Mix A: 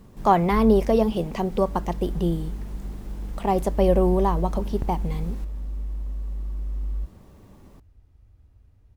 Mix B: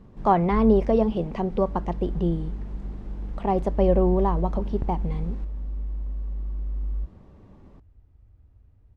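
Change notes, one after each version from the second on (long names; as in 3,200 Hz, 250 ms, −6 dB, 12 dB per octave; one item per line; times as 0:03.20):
master: add head-to-tape spacing loss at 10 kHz 22 dB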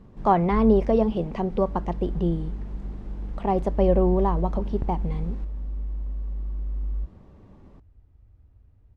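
nothing changed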